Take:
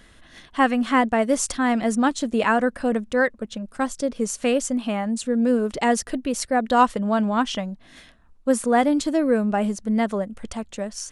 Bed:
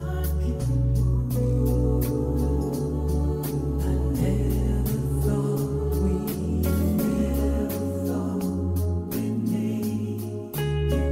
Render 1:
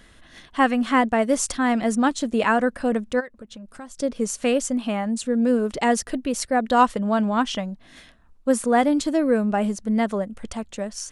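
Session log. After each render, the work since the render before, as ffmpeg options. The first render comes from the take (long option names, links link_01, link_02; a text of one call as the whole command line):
ffmpeg -i in.wav -filter_complex "[0:a]asplit=3[link_01][link_02][link_03];[link_01]afade=type=out:start_time=3.19:duration=0.02[link_04];[link_02]acompressor=threshold=-39dB:ratio=3:attack=3.2:release=140:knee=1:detection=peak,afade=type=in:start_time=3.19:duration=0.02,afade=type=out:start_time=3.97:duration=0.02[link_05];[link_03]afade=type=in:start_time=3.97:duration=0.02[link_06];[link_04][link_05][link_06]amix=inputs=3:normalize=0" out.wav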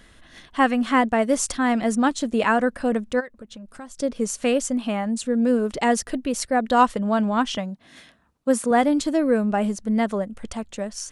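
ffmpeg -i in.wav -filter_complex "[0:a]asettb=1/sr,asplit=3[link_01][link_02][link_03];[link_01]atrim=end=7.574[link_04];[link_02]atrim=start=7.57:end=8.71,asetpts=PTS-STARTPTS,afade=type=in:duration=0.004:curve=qsin,afade=type=out:start_time=1.136:duration=0.004:curve=qsin,highpass=100[link_05];[link_03]atrim=start=8.706[link_06];[link_04][link_05]acrossfade=duration=0.004:curve1=hsin:curve2=qsin[link_07];[link_07][link_06]acrossfade=duration=0.004:curve1=qsin:curve2=hsin" out.wav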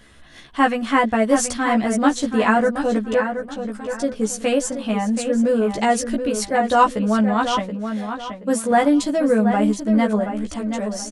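ffmpeg -i in.wav -filter_complex "[0:a]asplit=2[link_01][link_02];[link_02]adelay=14,volume=-2dB[link_03];[link_01][link_03]amix=inputs=2:normalize=0,asplit=2[link_04][link_05];[link_05]adelay=727,lowpass=frequency=3800:poles=1,volume=-8dB,asplit=2[link_06][link_07];[link_07]adelay=727,lowpass=frequency=3800:poles=1,volume=0.32,asplit=2[link_08][link_09];[link_09]adelay=727,lowpass=frequency=3800:poles=1,volume=0.32,asplit=2[link_10][link_11];[link_11]adelay=727,lowpass=frequency=3800:poles=1,volume=0.32[link_12];[link_04][link_06][link_08][link_10][link_12]amix=inputs=5:normalize=0" out.wav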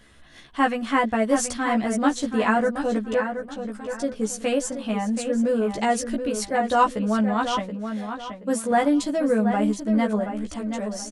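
ffmpeg -i in.wav -af "volume=-4dB" out.wav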